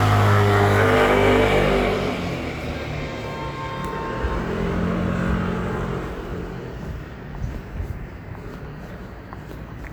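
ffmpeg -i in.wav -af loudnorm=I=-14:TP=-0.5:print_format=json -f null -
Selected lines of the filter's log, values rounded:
"input_i" : "-22.5",
"input_tp" : "-4.5",
"input_lra" : "15.9",
"input_thresh" : "-34.1",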